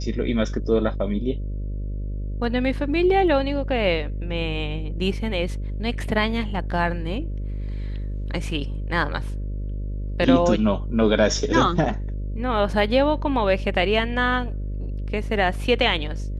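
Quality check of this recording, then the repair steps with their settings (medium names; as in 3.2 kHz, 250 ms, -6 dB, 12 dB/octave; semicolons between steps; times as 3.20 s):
buzz 50 Hz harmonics 12 -28 dBFS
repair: de-hum 50 Hz, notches 12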